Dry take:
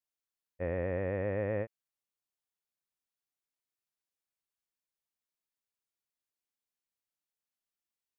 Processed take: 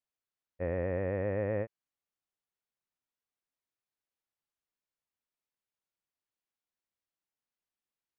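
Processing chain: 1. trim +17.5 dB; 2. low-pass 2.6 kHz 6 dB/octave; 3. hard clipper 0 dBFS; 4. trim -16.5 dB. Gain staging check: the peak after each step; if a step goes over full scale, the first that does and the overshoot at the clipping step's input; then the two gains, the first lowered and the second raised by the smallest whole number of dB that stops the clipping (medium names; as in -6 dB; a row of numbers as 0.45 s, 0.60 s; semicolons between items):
-4.5 dBFS, -5.0 dBFS, -5.0 dBFS, -21.5 dBFS; nothing clips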